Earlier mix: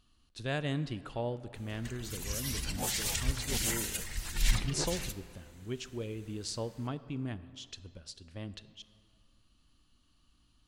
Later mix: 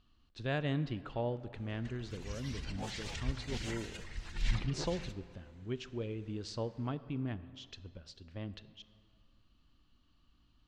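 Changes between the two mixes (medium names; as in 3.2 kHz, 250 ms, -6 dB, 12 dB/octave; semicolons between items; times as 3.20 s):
background -4.5 dB; master: add distance through air 150 m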